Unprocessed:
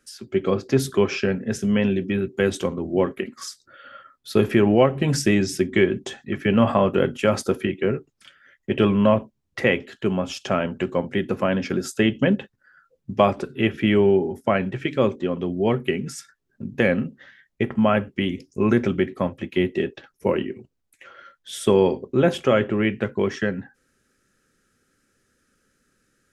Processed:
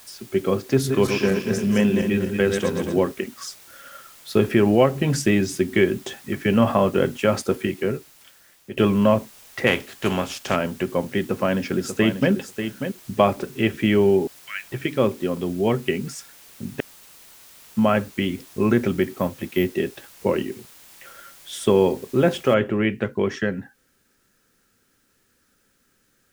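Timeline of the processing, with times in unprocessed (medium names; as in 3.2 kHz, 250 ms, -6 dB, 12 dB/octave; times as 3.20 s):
0.72–3.00 s: backward echo that repeats 118 ms, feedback 64%, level -5.5 dB
4.77–6.01 s: band-stop 5.4 kHz
7.61–8.77 s: fade out, to -12.5 dB
9.66–10.55 s: spectral contrast reduction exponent 0.6
11.19–12.32 s: echo throw 590 ms, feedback 10%, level -8.5 dB
14.27–14.72 s: inverse Chebyshev high-pass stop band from 840 Hz
15.39–15.96 s: treble shelf 6 kHz -> 9.9 kHz +9.5 dB
16.80–17.77 s: inverse Chebyshev high-pass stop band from 1.8 kHz, stop band 70 dB
19.02–19.74 s: careless resampling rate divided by 3×, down filtered, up hold
22.54 s: noise floor step -48 dB -69 dB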